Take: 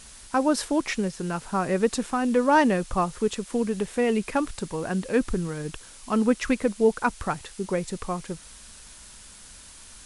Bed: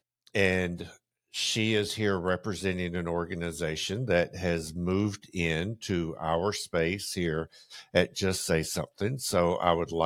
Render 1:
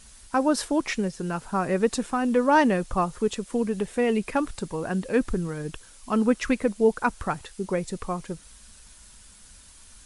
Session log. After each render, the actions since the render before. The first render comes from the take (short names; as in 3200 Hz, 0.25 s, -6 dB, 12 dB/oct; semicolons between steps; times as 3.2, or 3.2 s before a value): denoiser 6 dB, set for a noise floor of -47 dBFS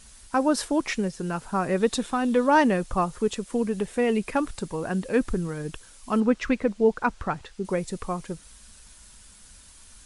1.77–2.48 bell 3600 Hz +8.5 dB 0.33 oct; 6.2–7.65 air absorption 86 m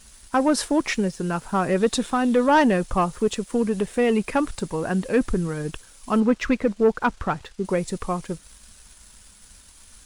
sample leveller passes 1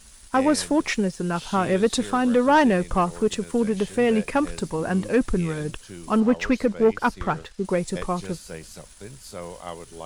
add bed -11 dB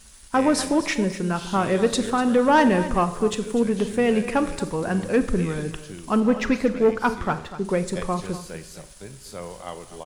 echo 0.245 s -14 dB; Schroeder reverb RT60 0.73 s, combs from 30 ms, DRR 11.5 dB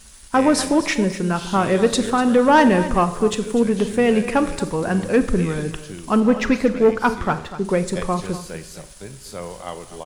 gain +3.5 dB